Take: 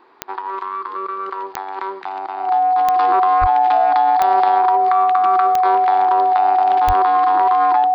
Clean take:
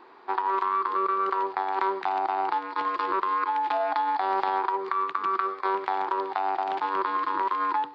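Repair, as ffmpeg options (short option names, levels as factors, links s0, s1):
-filter_complex "[0:a]adeclick=t=4,bandreject=f=740:w=30,asplit=3[s0][s1][s2];[s0]afade=t=out:st=3.4:d=0.02[s3];[s1]highpass=f=140:w=0.5412,highpass=f=140:w=1.3066,afade=t=in:st=3.4:d=0.02,afade=t=out:st=3.52:d=0.02[s4];[s2]afade=t=in:st=3.52:d=0.02[s5];[s3][s4][s5]amix=inputs=3:normalize=0,asplit=3[s6][s7][s8];[s6]afade=t=out:st=6.86:d=0.02[s9];[s7]highpass=f=140:w=0.5412,highpass=f=140:w=1.3066,afade=t=in:st=6.86:d=0.02,afade=t=out:st=6.98:d=0.02[s10];[s8]afade=t=in:st=6.98:d=0.02[s11];[s9][s10][s11]amix=inputs=3:normalize=0,asetnsamples=n=441:p=0,asendcmd='2.96 volume volume -6dB',volume=1"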